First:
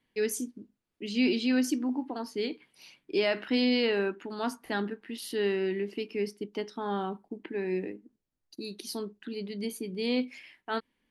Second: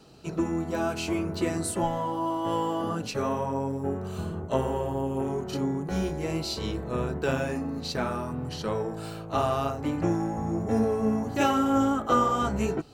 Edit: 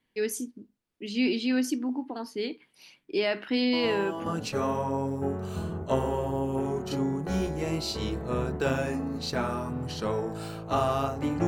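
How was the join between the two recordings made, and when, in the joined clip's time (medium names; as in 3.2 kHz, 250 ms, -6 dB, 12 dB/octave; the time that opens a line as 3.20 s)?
first
3.73 s: add second from 2.35 s 0.53 s -6 dB
4.26 s: go over to second from 2.88 s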